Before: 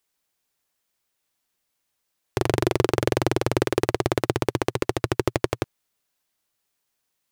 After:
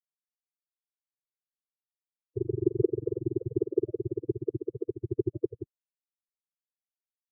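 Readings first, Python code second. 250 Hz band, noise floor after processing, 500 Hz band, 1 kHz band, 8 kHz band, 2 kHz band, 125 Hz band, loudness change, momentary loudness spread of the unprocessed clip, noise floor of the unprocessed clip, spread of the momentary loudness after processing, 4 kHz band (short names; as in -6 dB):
-5.5 dB, under -85 dBFS, -5.5 dB, under -40 dB, under -40 dB, under -40 dB, -8.0 dB, -7.0 dB, 5 LU, -78 dBFS, 7 LU, under -40 dB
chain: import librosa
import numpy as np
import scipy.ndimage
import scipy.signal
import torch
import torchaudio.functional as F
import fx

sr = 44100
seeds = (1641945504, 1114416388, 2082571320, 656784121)

y = fx.spec_topn(x, sr, count=8)
y = fx.upward_expand(y, sr, threshold_db=-33.0, expansion=2.5)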